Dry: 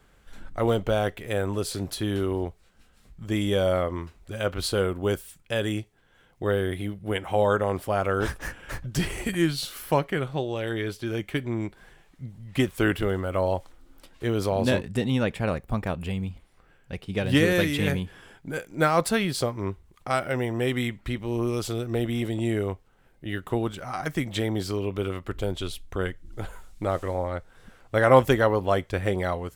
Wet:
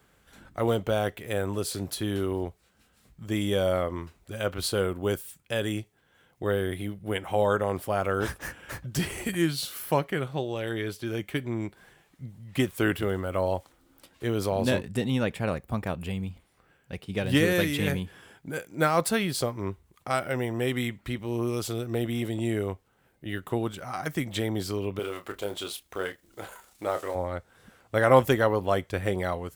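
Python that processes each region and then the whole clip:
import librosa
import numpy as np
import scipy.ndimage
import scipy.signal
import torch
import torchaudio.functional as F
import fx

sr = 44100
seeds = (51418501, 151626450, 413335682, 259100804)

y = fx.chain(x, sr, fx.law_mismatch(coded='mu'),
    fx.bass_treble(bass_db=-15, treble_db=0),
    fx.doubler(ms=29.0, db=-8.5), at=(24.99, 27.15))
y = scipy.signal.sosfilt(scipy.signal.butter(2, 68.0, 'highpass', fs=sr, output='sos'), y)
y = fx.high_shelf(y, sr, hz=11000.0, db=8.0)
y = y * 10.0 ** (-2.0 / 20.0)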